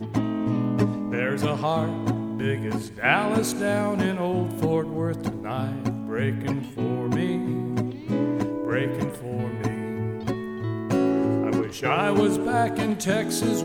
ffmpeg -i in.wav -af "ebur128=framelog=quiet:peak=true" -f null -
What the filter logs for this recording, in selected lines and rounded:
Integrated loudness:
  I:         -25.4 LUFS
  Threshold: -35.4 LUFS
Loudness range:
  LRA:         3.3 LU
  Threshold: -45.7 LUFS
  LRA low:   -27.4 LUFS
  LRA high:  -24.1 LUFS
True peak:
  Peak:       -5.3 dBFS